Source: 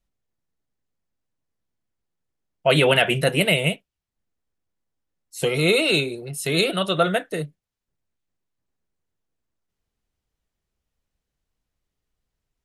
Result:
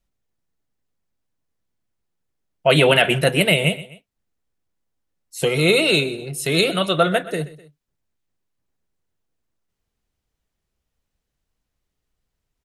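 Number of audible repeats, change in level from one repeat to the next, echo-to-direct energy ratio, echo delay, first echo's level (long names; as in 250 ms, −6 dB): 2, −6.0 dB, −16.5 dB, 127 ms, −17.5 dB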